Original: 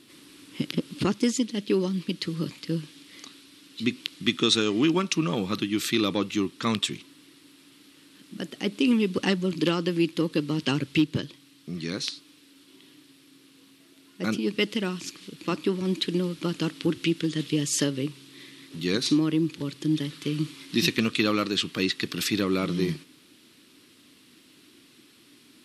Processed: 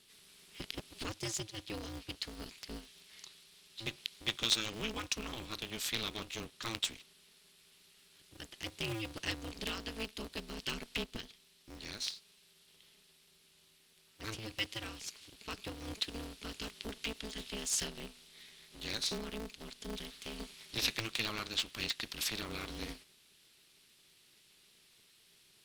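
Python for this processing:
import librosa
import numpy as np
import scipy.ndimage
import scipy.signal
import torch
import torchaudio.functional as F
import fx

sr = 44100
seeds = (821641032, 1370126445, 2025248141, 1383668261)

y = fx.tone_stack(x, sr, knobs='5-5-5')
y = y * np.sign(np.sin(2.0 * np.pi * 110.0 * np.arange(len(y)) / sr))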